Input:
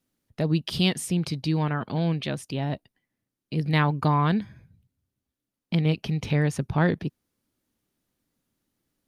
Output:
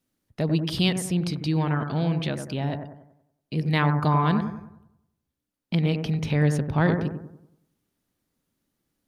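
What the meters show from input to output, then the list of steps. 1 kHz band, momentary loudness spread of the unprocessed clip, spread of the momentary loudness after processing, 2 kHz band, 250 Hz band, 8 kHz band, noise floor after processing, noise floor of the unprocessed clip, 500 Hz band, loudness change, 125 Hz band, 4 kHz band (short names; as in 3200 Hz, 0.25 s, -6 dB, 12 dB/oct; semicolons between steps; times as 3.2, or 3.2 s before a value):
+1.0 dB, 8 LU, 10 LU, +0.5 dB, +1.0 dB, n/a, -82 dBFS, under -85 dBFS, +1.0 dB, +1.0 dB, +1.0 dB, 0.0 dB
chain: analogue delay 94 ms, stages 1024, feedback 44%, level -6.5 dB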